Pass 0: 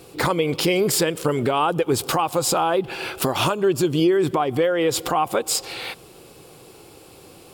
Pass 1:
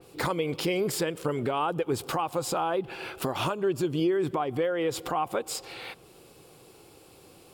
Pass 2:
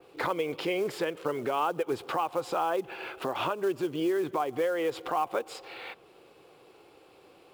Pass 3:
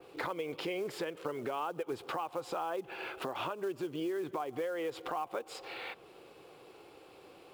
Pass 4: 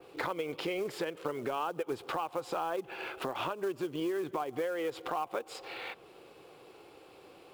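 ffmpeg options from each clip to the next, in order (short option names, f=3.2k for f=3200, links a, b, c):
-af "adynamicequalizer=threshold=0.01:dfrequency=3200:dqfactor=0.7:tfrequency=3200:tqfactor=0.7:attack=5:release=100:ratio=0.375:range=2.5:mode=cutabove:tftype=highshelf,volume=-7.5dB"
-filter_complex "[0:a]acrossover=split=300 3700:gain=0.251 1 0.158[a][b][c];[a][b][c]amix=inputs=3:normalize=0,acrusher=bits=6:mode=log:mix=0:aa=0.000001"
-af "acompressor=threshold=-41dB:ratio=2,volume=1dB"
-af "aeval=exprs='0.0708*(cos(1*acos(clip(val(0)/0.0708,-1,1)))-cos(1*PI/2))+0.002*(cos(7*acos(clip(val(0)/0.0708,-1,1)))-cos(7*PI/2))':c=same,volume=2.5dB"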